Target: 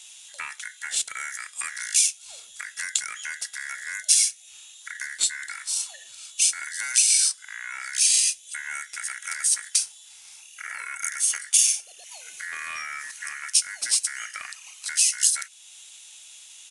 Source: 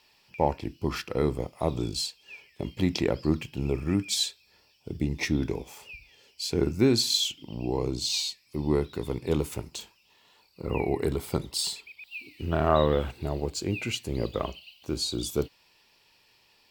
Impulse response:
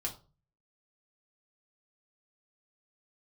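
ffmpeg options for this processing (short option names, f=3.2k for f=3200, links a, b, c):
-filter_complex "[0:a]asplit=2[a][b];[b]acompressor=threshold=-41dB:ratio=6,volume=1dB[c];[a][c]amix=inputs=2:normalize=0,aexciter=amount=13:drive=6.4:freq=4.5k,acrossover=split=1100[d][e];[d]asoftclip=type=tanh:threshold=-17.5dB[f];[e]aderivative[g];[f][g]amix=inputs=2:normalize=0,aeval=exprs='val(0)*sin(2*PI*1800*n/s)':c=same,aresample=22050,aresample=44100,acrossover=split=1100|5300[h][i][j];[h]acompressor=threshold=-51dB:ratio=4[k];[i]acompressor=threshold=-32dB:ratio=4[l];[j]acompressor=threshold=-17dB:ratio=4[m];[k][l][m]amix=inputs=3:normalize=0"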